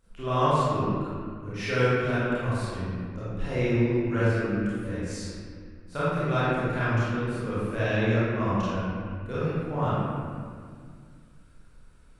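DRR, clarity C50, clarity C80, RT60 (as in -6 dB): -13.0 dB, -6.5 dB, -3.0 dB, 2.1 s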